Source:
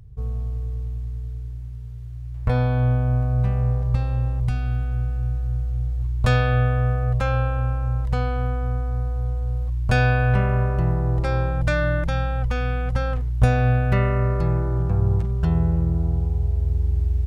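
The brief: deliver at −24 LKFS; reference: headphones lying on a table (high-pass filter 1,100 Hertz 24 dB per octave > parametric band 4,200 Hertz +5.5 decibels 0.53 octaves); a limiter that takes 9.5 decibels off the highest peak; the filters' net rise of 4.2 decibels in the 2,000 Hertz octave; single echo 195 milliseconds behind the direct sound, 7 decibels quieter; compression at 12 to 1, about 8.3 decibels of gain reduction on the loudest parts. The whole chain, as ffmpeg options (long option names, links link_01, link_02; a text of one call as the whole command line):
ffmpeg -i in.wav -af "equalizer=frequency=2000:width_type=o:gain=6,acompressor=threshold=-20dB:ratio=12,alimiter=limit=-20.5dB:level=0:latency=1,highpass=frequency=1100:width=0.5412,highpass=frequency=1100:width=1.3066,equalizer=frequency=4200:width_type=o:width=0.53:gain=5.5,aecho=1:1:195:0.447,volume=14dB" out.wav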